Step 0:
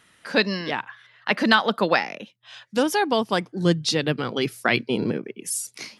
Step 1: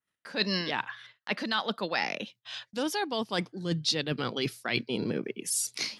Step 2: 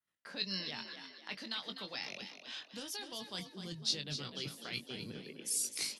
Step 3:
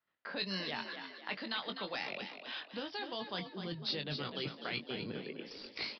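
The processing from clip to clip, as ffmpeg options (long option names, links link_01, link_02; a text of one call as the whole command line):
ffmpeg -i in.wav -af "areverse,acompressor=threshold=-27dB:ratio=16,areverse,agate=range=-32dB:threshold=-54dB:ratio=16:detection=peak,adynamicequalizer=threshold=0.00282:dfrequency=4200:dqfactor=1.2:tfrequency=4200:tqfactor=1.2:attack=5:release=100:ratio=0.375:range=3.5:mode=boostabove:tftype=bell" out.wav
ffmpeg -i in.wav -filter_complex "[0:a]acrossover=split=130|3000[link_01][link_02][link_03];[link_02]acompressor=threshold=-41dB:ratio=10[link_04];[link_01][link_04][link_03]amix=inputs=3:normalize=0,asplit=2[link_05][link_06];[link_06]adelay=21,volume=-7.5dB[link_07];[link_05][link_07]amix=inputs=2:normalize=0,asplit=2[link_08][link_09];[link_09]asplit=5[link_10][link_11][link_12][link_13][link_14];[link_10]adelay=251,afreqshift=40,volume=-9dB[link_15];[link_11]adelay=502,afreqshift=80,volume=-15.9dB[link_16];[link_12]adelay=753,afreqshift=120,volume=-22.9dB[link_17];[link_13]adelay=1004,afreqshift=160,volume=-29.8dB[link_18];[link_14]adelay=1255,afreqshift=200,volume=-36.7dB[link_19];[link_15][link_16][link_17][link_18][link_19]amix=inputs=5:normalize=0[link_20];[link_08][link_20]amix=inputs=2:normalize=0,volume=-5.5dB" out.wav
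ffmpeg -i in.wav -filter_complex "[0:a]asplit=2[link_01][link_02];[link_02]highpass=frequency=720:poles=1,volume=11dB,asoftclip=type=tanh:threshold=-18.5dB[link_03];[link_01][link_03]amix=inputs=2:normalize=0,lowpass=frequency=1000:poles=1,volume=-6dB,aresample=11025,aresample=44100,volume=5.5dB" out.wav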